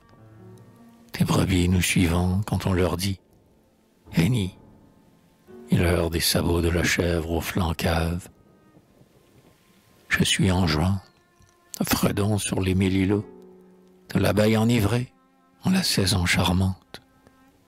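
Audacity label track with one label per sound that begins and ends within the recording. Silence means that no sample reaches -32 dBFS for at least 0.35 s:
1.140000	3.140000	sound
4.130000	4.490000	sound
5.710000	8.260000	sound
10.100000	10.990000	sound
11.740000	13.210000	sound
14.100000	15.050000	sound
15.650000	16.960000	sound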